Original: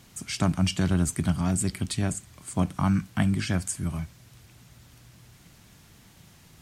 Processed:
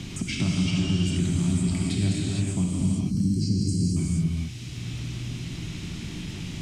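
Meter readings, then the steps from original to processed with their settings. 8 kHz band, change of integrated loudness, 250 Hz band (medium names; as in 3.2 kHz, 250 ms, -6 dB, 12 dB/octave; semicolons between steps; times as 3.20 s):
-2.0 dB, +0.5 dB, +3.0 dB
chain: band-stop 4.5 kHz, Q 22; time-frequency box 2.65–3.96 s, 520–4000 Hz -26 dB; high-order bell 910 Hz -12.5 dB 2.3 oct; peak limiter -23.5 dBFS, peak gain reduction 10 dB; distance through air 87 m; gated-style reverb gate 490 ms flat, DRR -5 dB; three bands compressed up and down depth 70%; trim +3.5 dB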